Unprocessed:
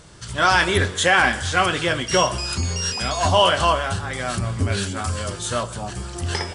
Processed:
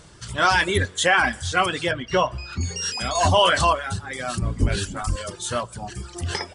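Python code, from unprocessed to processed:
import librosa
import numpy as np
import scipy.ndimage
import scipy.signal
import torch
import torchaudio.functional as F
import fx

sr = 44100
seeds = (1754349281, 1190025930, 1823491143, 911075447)

y = fx.octave_divider(x, sr, octaves=1, level_db=2.0, at=(4.4, 5.16))
y = fx.dereverb_blind(y, sr, rt60_s=1.3)
y = fx.lowpass(y, sr, hz=2700.0, slope=12, at=(1.91, 2.61))
y = fx.env_flatten(y, sr, amount_pct=50, at=(3.15, 3.73))
y = y * 10.0 ** (-1.0 / 20.0)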